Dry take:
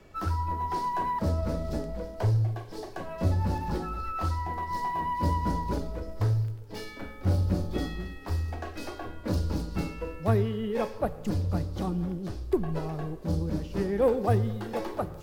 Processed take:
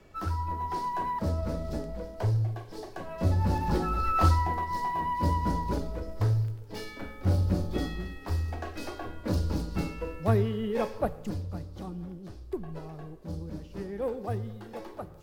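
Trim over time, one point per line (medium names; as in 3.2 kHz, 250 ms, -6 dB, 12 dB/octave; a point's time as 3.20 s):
3.03 s -2 dB
4.26 s +8 dB
4.72 s 0 dB
11.06 s 0 dB
11.51 s -8.5 dB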